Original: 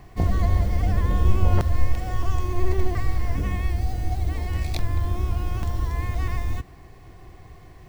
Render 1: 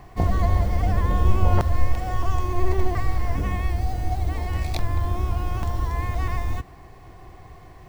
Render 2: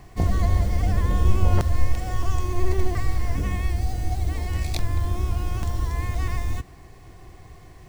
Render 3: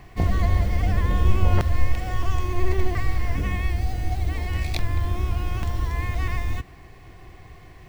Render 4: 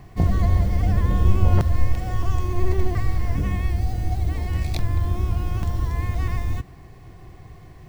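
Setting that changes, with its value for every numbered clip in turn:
bell, frequency: 880, 7900, 2400, 140 Hz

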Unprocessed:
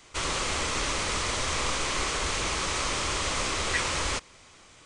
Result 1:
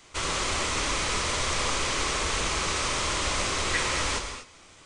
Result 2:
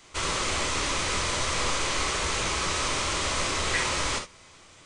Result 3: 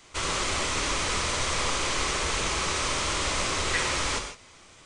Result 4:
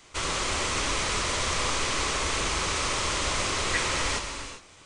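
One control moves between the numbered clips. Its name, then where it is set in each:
non-linear reverb, gate: 270, 90, 180, 430 ms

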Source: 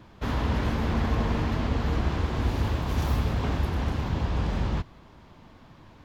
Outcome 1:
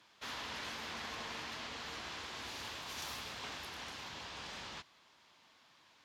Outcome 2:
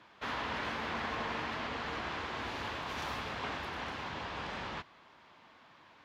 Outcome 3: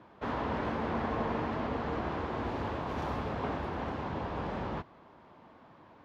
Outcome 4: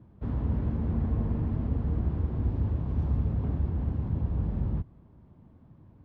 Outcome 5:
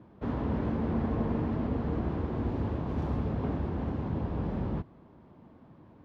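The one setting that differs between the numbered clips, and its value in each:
band-pass, frequency: 6000, 2100, 730, 110, 280 Hz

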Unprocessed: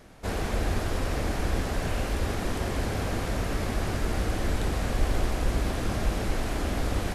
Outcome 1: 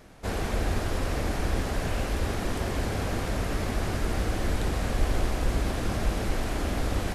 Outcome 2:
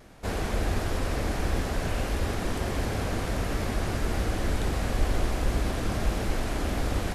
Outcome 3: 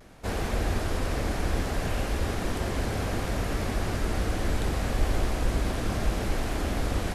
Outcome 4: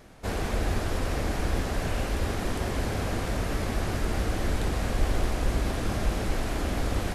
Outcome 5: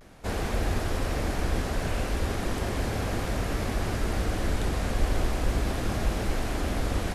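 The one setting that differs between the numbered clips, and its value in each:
vibrato, rate: 12, 1.5, 0.66, 4.6, 0.38 Hz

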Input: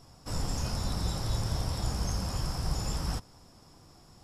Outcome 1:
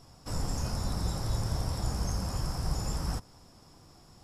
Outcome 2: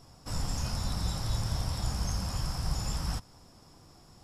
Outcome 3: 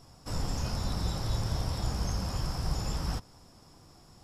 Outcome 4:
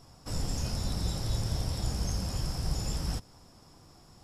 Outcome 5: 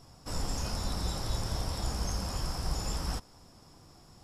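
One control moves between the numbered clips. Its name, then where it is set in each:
dynamic EQ, frequency: 3300, 400, 9300, 1100, 120 Hz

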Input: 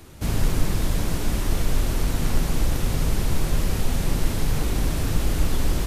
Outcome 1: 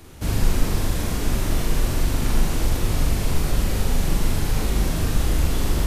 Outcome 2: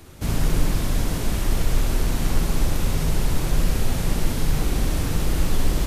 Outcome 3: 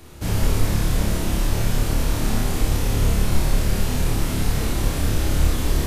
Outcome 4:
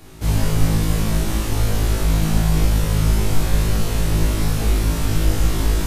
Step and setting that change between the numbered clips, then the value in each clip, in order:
flutter echo, walls apart: 7.1, 10.9, 4.8, 3.2 m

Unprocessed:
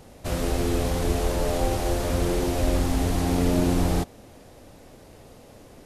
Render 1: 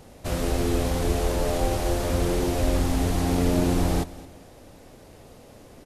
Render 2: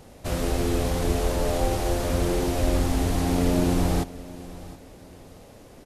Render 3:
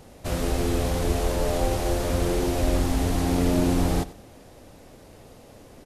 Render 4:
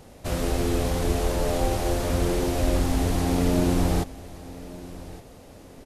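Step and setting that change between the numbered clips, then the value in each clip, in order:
feedback echo, time: 217, 719, 94, 1163 ms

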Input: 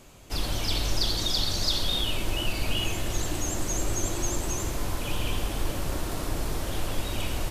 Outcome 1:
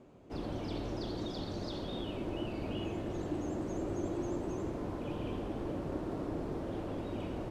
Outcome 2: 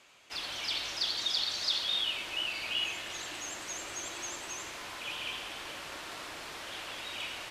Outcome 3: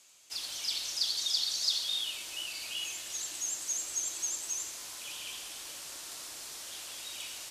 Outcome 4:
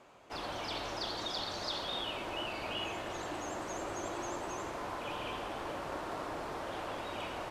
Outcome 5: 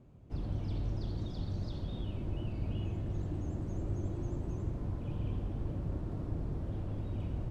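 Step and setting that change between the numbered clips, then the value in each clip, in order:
band-pass, frequency: 310, 2400, 6500, 940, 120 Hz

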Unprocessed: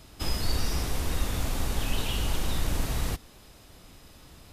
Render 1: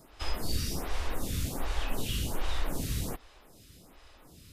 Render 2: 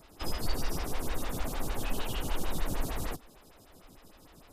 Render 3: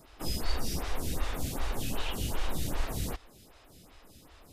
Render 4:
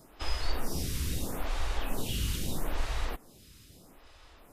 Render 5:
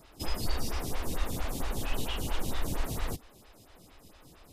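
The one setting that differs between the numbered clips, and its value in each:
photocell phaser, rate: 1.3, 6.6, 2.6, 0.78, 4.4 Hz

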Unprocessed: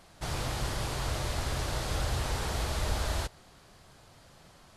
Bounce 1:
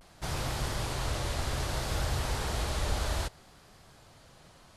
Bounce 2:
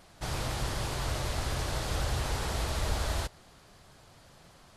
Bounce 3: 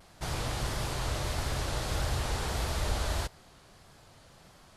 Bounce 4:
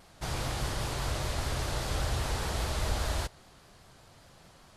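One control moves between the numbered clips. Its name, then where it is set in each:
vibrato, rate: 0.62, 12, 1.6, 5 Hz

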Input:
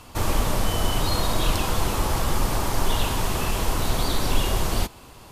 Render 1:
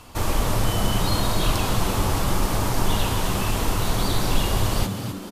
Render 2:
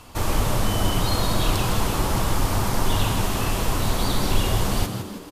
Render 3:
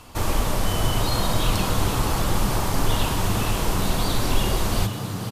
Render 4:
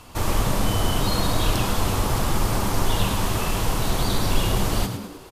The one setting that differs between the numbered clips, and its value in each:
frequency-shifting echo, time: 0.255, 0.16, 0.476, 0.104 s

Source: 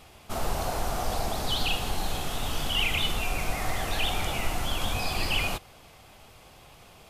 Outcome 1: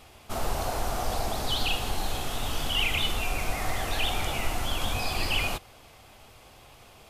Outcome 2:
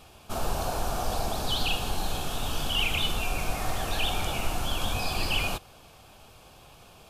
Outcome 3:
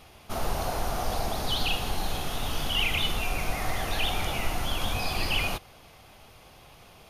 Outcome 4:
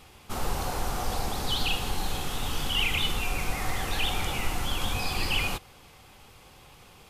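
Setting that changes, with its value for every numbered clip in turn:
notch, frequency: 170, 2000, 7700, 650 Hz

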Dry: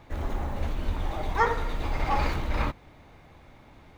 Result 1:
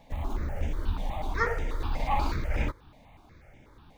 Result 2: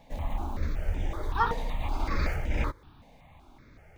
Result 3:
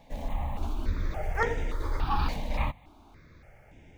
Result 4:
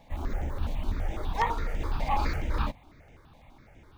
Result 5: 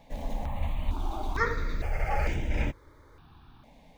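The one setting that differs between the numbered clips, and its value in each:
step phaser, rate: 8.2, 5.3, 3.5, 12, 2.2 Hz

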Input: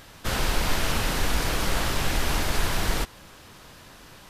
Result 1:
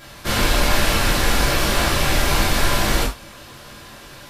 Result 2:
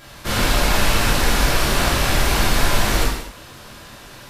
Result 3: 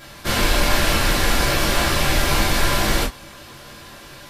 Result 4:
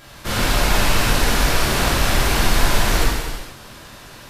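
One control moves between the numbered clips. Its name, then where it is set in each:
non-linear reverb, gate: 120, 290, 80, 530 ms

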